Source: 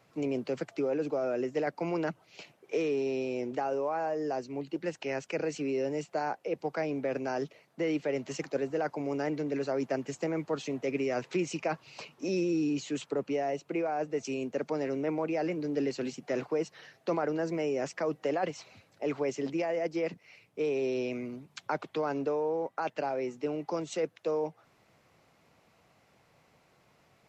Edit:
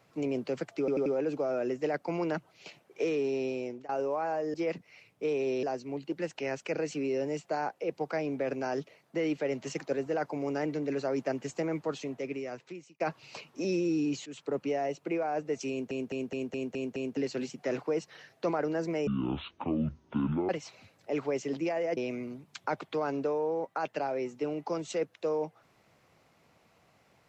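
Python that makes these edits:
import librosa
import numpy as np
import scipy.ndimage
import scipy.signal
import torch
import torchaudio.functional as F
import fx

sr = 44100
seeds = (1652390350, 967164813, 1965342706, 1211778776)

y = fx.edit(x, sr, fx.stutter(start_s=0.79, slice_s=0.09, count=4),
    fx.fade_out_to(start_s=3.15, length_s=0.47, curve='qsin', floor_db=-23.5),
    fx.fade_out_span(start_s=10.41, length_s=1.23),
    fx.fade_in_from(start_s=12.9, length_s=0.29, floor_db=-15.5),
    fx.stutter_over(start_s=14.34, slice_s=0.21, count=7),
    fx.speed_span(start_s=17.71, length_s=0.71, speed=0.5),
    fx.move(start_s=19.9, length_s=1.09, to_s=4.27), tone=tone)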